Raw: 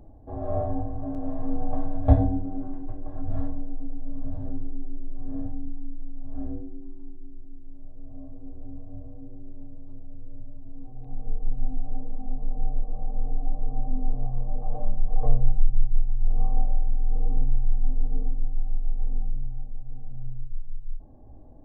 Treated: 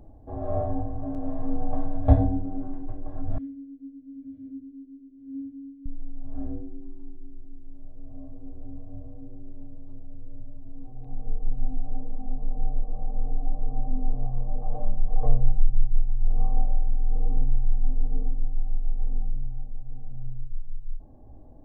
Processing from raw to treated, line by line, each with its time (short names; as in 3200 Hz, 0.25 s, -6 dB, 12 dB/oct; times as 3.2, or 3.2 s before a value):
3.38–5.86 vowel filter i